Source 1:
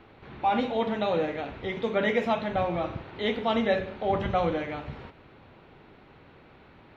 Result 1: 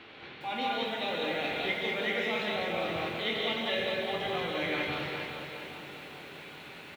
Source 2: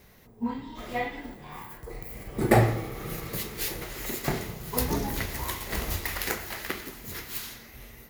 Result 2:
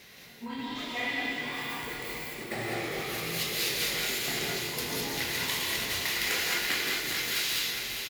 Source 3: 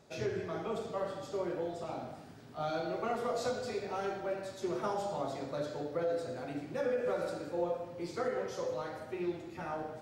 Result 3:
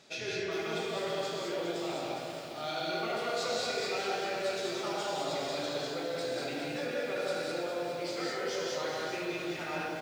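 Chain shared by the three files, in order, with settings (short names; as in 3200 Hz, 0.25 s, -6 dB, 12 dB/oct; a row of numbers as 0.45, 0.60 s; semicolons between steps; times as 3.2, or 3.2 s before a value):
doubler 23 ms -12 dB; reverse; compressor 6:1, threshold -35 dBFS; reverse; weighting filter D; on a send: analogue delay 0.206 s, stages 2048, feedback 83%, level -18 dB; on the sum: non-linear reverb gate 0.23 s rising, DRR -1 dB; lo-fi delay 0.408 s, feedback 55%, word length 9-bit, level -7 dB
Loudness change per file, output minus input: -3.5, +0.5, +2.5 LU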